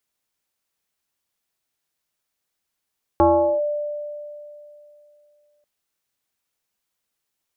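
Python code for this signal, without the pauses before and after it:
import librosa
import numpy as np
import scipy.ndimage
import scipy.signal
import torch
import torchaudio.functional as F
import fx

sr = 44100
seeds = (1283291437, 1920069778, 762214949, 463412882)

y = fx.fm2(sr, length_s=2.44, level_db=-10.5, carrier_hz=591.0, ratio=0.43, index=1.6, index_s=0.41, decay_s=2.82, shape='linear')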